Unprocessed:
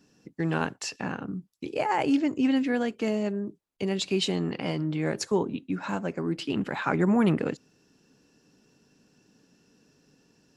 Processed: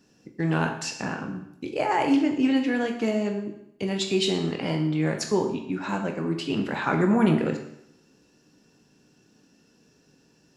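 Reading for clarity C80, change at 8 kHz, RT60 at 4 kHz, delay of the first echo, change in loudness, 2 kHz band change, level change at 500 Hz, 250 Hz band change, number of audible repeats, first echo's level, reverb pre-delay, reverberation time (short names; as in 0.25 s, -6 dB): 10.0 dB, +2.5 dB, 0.75 s, none, +2.5 dB, +3.0 dB, +2.5 dB, +2.5 dB, none, none, 13 ms, 0.75 s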